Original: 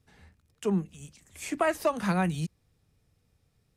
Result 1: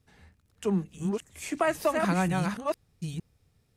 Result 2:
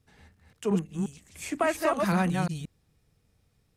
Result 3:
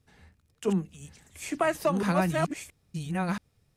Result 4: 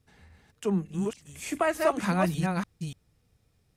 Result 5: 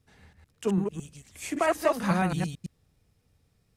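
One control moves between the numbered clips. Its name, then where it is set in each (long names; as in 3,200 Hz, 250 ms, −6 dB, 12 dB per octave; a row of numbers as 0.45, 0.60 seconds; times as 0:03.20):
delay that plays each chunk backwards, delay time: 457, 177, 676, 293, 111 milliseconds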